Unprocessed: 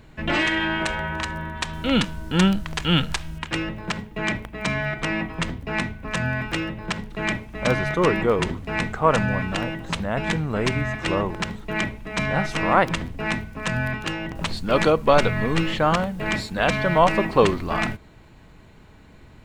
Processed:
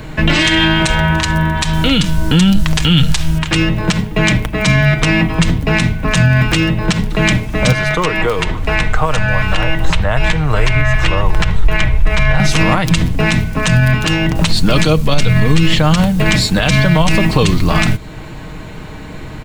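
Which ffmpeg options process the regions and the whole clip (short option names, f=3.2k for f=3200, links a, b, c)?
-filter_complex "[0:a]asettb=1/sr,asplit=3[a][b][c];[a]atrim=end=7.724[d];[b]atrim=start=7.72:end=12.4,asetpts=PTS-STARTPTS,afade=t=in:d=0.004:c=qsin,afade=t=out:st=4.676:d=0.004:c=qsin,acrossover=split=480|3200[e][f][g];[e]acompressor=threshold=-37dB:ratio=4[h];[f]acompressor=threshold=-25dB:ratio=4[i];[g]acompressor=threshold=-48dB:ratio=4[j];[h][i][j]amix=inputs=3:normalize=0,asubboost=boost=11.5:cutoff=74[k];[c]atrim=start=12.396[l];[d][k]acrossfade=d=0.004:c1=hsin:c2=qsin[m];[m][l]acrossfade=d=0.004:c1=qsin:c2=hsin,aecho=1:1:6.5:0.34,acrossover=split=180|3000[n][o][p];[o]acompressor=threshold=-39dB:ratio=2.5[q];[n][q][p]amix=inputs=3:normalize=0,alimiter=level_in=20.5dB:limit=-1dB:release=50:level=0:latency=1,volume=-1dB"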